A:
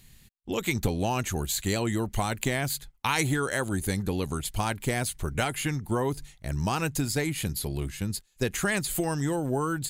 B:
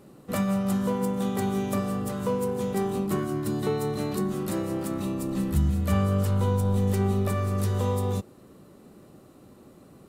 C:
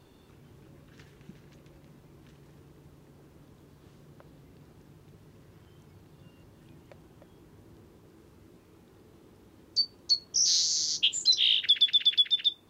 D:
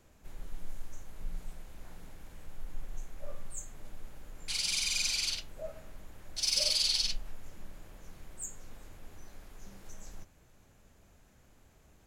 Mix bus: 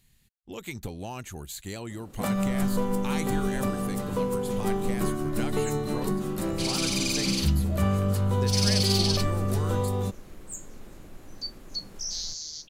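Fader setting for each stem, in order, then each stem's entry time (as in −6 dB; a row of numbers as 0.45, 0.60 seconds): −9.5, −1.0, −9.0, +2.0 decibels; 0.00, 1.90, 1.65, 2.10 seconds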